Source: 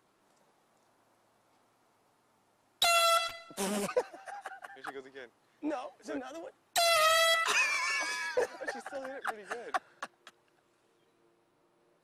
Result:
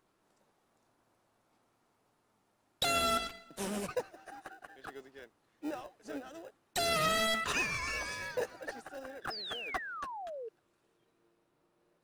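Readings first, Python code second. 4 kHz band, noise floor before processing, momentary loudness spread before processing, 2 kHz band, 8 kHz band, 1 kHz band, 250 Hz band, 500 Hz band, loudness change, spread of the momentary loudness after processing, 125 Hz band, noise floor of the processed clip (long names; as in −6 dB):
−4.5 dB, −71 dBFS, 20 LU, −4.5 dB, −5.0 dB, −4.5 dB, −0.5 dB, −4.5 dB, −4.5 dB, 20 LU, +5.0 dB, −76 dBFS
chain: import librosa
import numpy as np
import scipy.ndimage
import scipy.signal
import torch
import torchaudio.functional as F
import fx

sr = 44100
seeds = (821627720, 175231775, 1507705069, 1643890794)

p1 = fx.sample_hold(x, sr, seeds[0], rate_hz=1100.0, jitter_pct=0)
p2 = x + F.gain(torch.from_numpy(p1), -9.0).numpy()
p3 = fx.spec_paint(p2, sr, seeds[1], shape='fall', start_s=9.3, length_s=1.19, low_hz=430.0, high_hz=5300.0, level_db=-37.0)
y = F.gain(torch.from_numpy(p3), -5.0).numpy()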